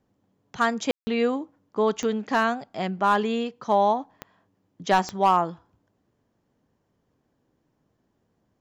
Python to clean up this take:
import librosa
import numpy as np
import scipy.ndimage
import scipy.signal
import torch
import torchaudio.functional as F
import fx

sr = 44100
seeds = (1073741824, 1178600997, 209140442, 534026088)

y = fx.fix_declip(x, sr, threshold_db=-11.5)
y = fx.fix_declick_ar(y, sr, threshold=10.0)
y = fx.fix_ambience(y, sr, seeds[0], print_start_s=6.76, print_end_s=7.26, start_s=0.91, end_s=1.07)